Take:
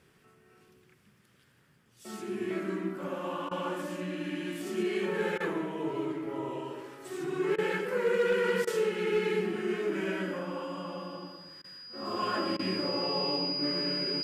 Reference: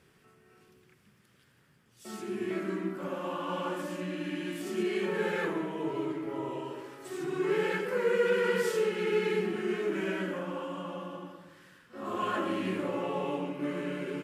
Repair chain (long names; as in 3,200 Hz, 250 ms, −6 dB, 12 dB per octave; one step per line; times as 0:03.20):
clipped peaks rebuilt −20.5 dBFS
notch filter 4,900 Hz, Q 30
repair the gap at 0:03.49/0:05.38/0:07.56/0:08.65/0:11.62/0:12.57, 21 ms